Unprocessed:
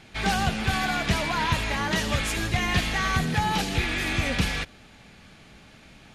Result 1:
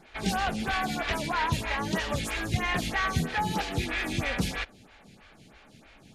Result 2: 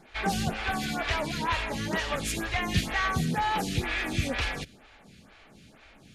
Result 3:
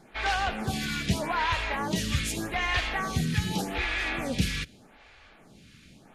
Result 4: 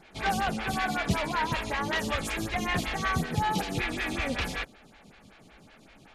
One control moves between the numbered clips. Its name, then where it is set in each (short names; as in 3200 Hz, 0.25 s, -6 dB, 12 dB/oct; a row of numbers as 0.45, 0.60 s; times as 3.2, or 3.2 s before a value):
photocell phaser, rate: 3.1, 2.1, 0.83, 5.3 Hz